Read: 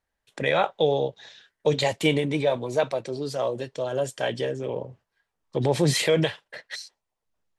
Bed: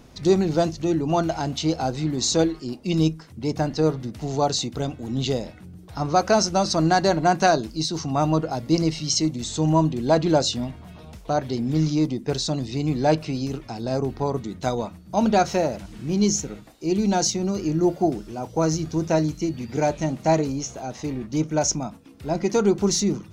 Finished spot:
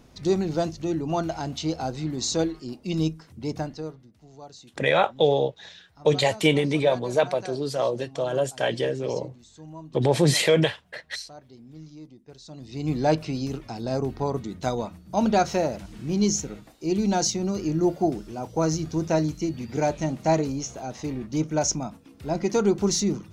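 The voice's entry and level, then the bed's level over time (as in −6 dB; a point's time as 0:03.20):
4.40 s, +2.0 dB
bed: 0:03.56 −4.5 dB
0:04.09 −22.5 dB
0:12.39 −22.5 dB
0:12.90 −2 dB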